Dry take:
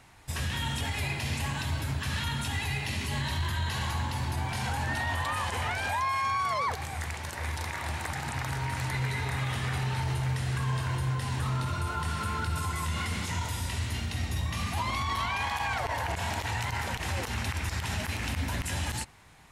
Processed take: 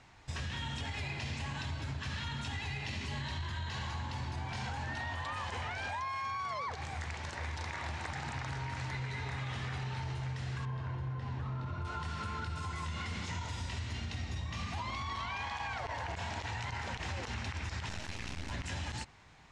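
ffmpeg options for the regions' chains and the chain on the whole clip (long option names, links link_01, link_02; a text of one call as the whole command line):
ffmpeg -i in.wav -filter_complex "[0:a]asettb=1/sr,asplit=3[link_01][link_02][link_03];[link_01]atrim=end=10.654[link_04];[link_02]atrim=start=10.65:end=11.85,asetpts=PTS-STARTPTS,afade=type=in:duration=0.004:curve=qsin,afade=type=out:start_time=1.196:duration=0.004:curve=qsin,adynamicsmooth=sensitivity=8:basefreq=5700,highshelf=frequency=2100:gain=-11.5[link_05];[link_03]atrim=start=11.846[link_06];[link_04][link_05]acrossfade=duration=0.004:curve1=hsin:curve2=qsin[link_07];[link_07][link_06]acrossfade=duration=0.004:curve1=qsin:curve2=hsin,asettb=1/sr,asplit=3[link_08][link_09][link_10];[link_08]atrim=end=17.894[link_11];[link_09]atrim=start=17.89:end=18.51,asetpts=PTS-STARTPTS,afade=type=in:duration=0.004:curve=qsin,afade=type=out:start_time=0.616:duration=0.004:curve=qsin,acrusher=bits=4:dc=4:mix=0:aa=0.000001,highshelf=frequency=10000:gain=8.5[link_12];[link_10]atrim=start=18.506[link_13];[link_11][link_12]acrossfade=duration=0.004:curve1=hsin:curve2=qsin[link_14];[link_14][link_13]acrossfade=duration=0.004:curve1=qsin:curve2=hsin,lowpass=frequency=6800:width=0.5412,lowpass=frequency=6800:width=1.3066,acompressor=threshold=-32dB:ratio=6,volume=-3dB" out.wav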